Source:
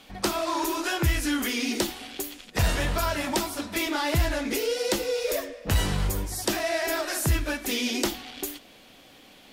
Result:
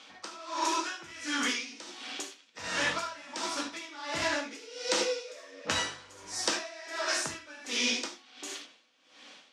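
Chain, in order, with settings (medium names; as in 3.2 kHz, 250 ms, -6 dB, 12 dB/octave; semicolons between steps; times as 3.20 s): cabinet simulation 370–7500 Hz, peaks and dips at 390 Hz -7 dB, 700 Hz -6 dB, 1.3 kHz +3 dB, 5.8 kHz +4 dB; gated-style reverb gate 110 ms flat, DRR 1.5 dB; logarithmic tremolo 1.4 Hz, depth 19 dB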